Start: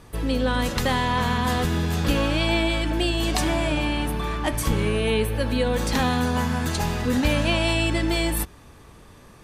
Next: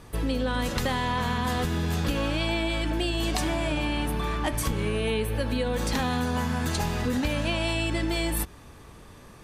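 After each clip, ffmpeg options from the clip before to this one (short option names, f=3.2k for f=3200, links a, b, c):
-af "acompressor=threshold=-23dB:ratio=6"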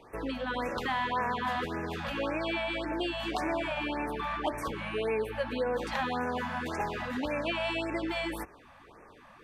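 -filter_complex "[0:a]acrossover=split=300 3200:gain=0.158 1 0.126[a][b][c];[a][b][c]amix=inputs=3:normalize=0,afftfilt=real='re*(1-between(b*sr/1024,340*pow(3900/340,0.5+0.5*sin(2*PI*1.8*pts/sr))/1.41,340*pow(3900/340,0.5+0.5*sin(2*PI*1.8*pts/sr))*1.41))':imag='im*(1-between(b*sr/1024,340*pow(3900/340,0.5+0.5*sin(2*PI*1.8*pts/sr))/1.41,340*pow(3900/340,0.5+0.5*sin(2*PI*1.8*pts/sr))*1.41))':win_size=1024:overlap=0.75"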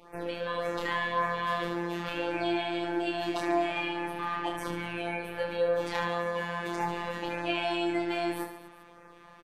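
-af "aecho=1:1:30|75|142.5|243.8|395.6:0.631|0.398|0.251|0.158|0.1,afftfilt=real='hypot(re,im)*cos(PI*b)':imag='0':win_size=1024:overlap=0.75,volume=2.5dB"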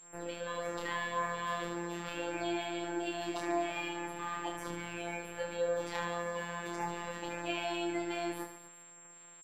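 -af "aeval=exprs='sgn(val(0))*max(abs(val(0))-0.00188,0)':c=same,aeval=exprs='val(0)+0.00398*sin(2*PI*7500*n/s)':c=same,volume=-5.5dB"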